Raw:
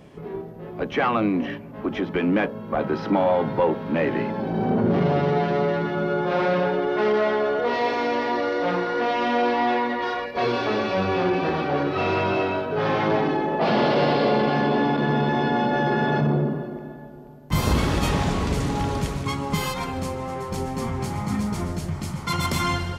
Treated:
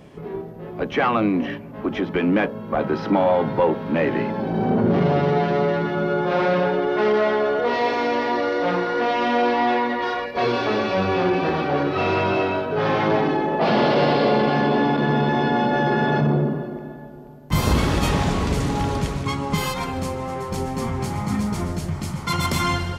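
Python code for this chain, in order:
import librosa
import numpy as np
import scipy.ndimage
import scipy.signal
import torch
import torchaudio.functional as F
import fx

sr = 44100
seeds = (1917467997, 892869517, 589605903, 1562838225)

y = fx.high_shelf(x, sr, hz=11000.0, db=-7.5, at=(18.97, 19.58))
y = y * librosa.db_to_amplitude(2.0)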